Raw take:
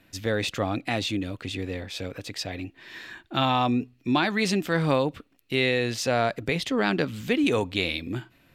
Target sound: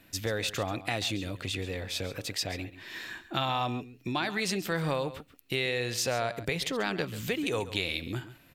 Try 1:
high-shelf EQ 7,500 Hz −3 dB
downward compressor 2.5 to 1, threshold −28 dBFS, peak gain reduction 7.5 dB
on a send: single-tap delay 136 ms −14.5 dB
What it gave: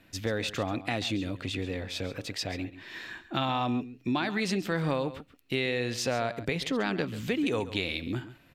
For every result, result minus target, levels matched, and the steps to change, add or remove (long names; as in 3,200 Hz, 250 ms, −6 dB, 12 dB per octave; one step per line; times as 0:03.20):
8,000 Hz band −5.0 dB; 250 Hz band +4.0 dB
change: high-shelf EQ 7,500 Hz +9 dB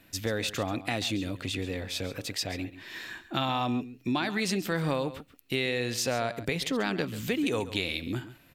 250 Hz band +3.5 dB
add after downward compressor: dynamic equaliser 250 Hz, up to −7 dB, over −44 dBFS, Q 2.2